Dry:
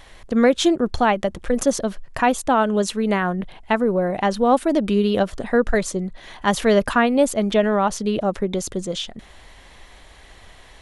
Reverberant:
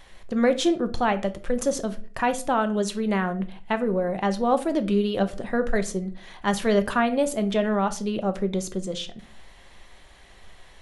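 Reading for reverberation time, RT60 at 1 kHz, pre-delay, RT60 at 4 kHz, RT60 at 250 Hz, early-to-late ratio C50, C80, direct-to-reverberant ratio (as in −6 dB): 0.45 s, 0.35 s, 5 ms, 0.30 s, 0.55 s, 16.0 dB, 21.0 dB, 8.5 dB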